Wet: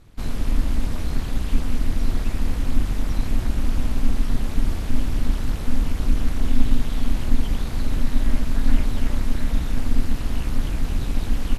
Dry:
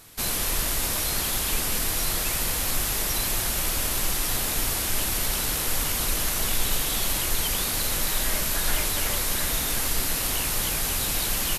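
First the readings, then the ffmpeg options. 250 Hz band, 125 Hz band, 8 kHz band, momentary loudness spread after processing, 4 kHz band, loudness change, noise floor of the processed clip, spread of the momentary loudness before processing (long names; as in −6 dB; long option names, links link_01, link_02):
+8.5 dB, +8.5 dB, −19.0 dB, 2 LU, −12.0 dB, −2.5 dB, −28 dBFS, 0 LU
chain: -af "tremolo=f=250:d=0.857,acrusher=bits=8:mode=log:mix=0:aa=0.000001,aemphasis=mode=reproduction:type=riaa,volume=-2dB"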